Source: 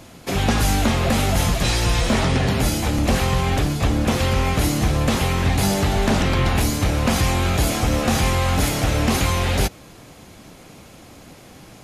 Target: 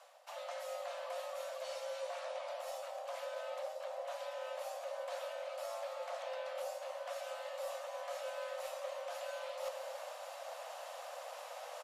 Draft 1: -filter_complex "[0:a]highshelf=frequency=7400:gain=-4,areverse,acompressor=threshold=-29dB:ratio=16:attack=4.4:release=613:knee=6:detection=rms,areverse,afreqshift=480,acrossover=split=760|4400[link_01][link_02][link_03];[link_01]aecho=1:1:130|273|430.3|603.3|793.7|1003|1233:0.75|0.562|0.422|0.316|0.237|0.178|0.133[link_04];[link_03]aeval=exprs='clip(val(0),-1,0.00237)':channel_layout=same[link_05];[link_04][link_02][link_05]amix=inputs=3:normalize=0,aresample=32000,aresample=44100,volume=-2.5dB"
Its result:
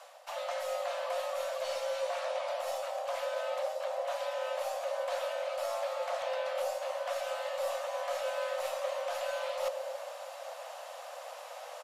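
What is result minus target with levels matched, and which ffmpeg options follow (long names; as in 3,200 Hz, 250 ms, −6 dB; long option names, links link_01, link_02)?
downward compressor: peak gain reduction −8 dB
-filter_complex "[0:a]highshelf=frequency=7400:gain=-4,areverse,acompressor=threshold=-37.5dB:ratio=16:attack=4.4:release=613:knee=6:detection=rms,areverse,afreqshift=480,acrossover=split=760|4400[link_01][link_02][link_03];[link_01]aecho=1:1:130|273|430.3|603.3|793.7|1003|1233:0.75|0.562|0.422|0.316|0.237|0.178|0.133[link_04];[link_03]aeval=exprs='clip(val(0),-1,0.00237)':channel_layout=same[link_05];[link_04][link_02][link_05]amix=inputs=3:normalize=0,aresample=32000,aresample=44100,volume=-2.5dB"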